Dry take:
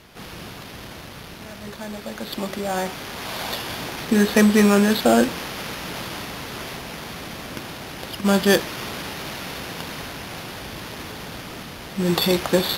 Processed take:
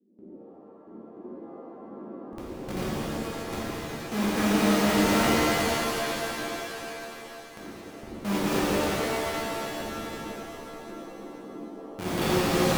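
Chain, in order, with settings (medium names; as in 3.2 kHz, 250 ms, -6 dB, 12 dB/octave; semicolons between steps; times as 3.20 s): Schmitt trigger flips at -18 dBFS; band noise 190–390 Hz -41 dBFS; gate with hold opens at -31 dBFS; high-pass 150 Hz 6 dB/octave; pitch-shifted reverb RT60 3.4 s, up +7 st, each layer -2 dB, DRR -8.5 dB; trim -7.5 dB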